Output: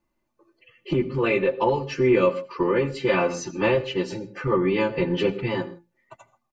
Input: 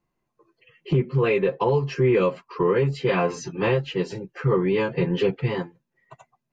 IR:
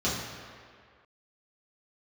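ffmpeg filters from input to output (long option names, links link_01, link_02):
-filter_complex "[0:a]aecho=1:1:3.4:0.64,asplit=2[link_01][link_02];[1:a]atrim=start_sample=2205,atrim=end_sample=3969,adelay=76[link_03];[link_02][link_03]afir=irnorm=-1:irlink=0,volume=-26dB[link_04];[link_01][link_04]amix=inputs=2:normalize=0"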